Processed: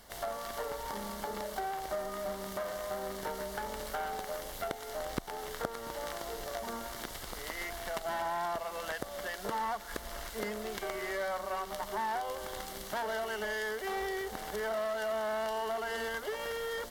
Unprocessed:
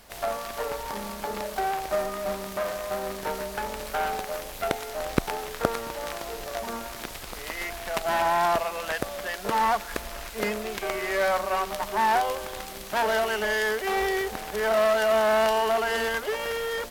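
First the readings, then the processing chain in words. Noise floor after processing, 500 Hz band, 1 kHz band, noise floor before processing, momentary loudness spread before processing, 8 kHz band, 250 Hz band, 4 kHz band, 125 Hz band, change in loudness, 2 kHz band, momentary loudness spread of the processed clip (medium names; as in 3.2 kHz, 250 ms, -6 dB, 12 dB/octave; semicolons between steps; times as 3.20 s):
-45 dBFS, -9.5 dB, -10.0 dB, -39 dBFS, 11 LU, -7.0 dB, -9.0 dB, -8.5 dB, -9.0 dB, -9.5 dB, -9.5 dB, 5 LU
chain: band-stop 2.5 kHz, Q 5.5; compression 2.5:1, threshold -32 dBFS, peak gain reduction 11.5 dB; trim -3.5 dB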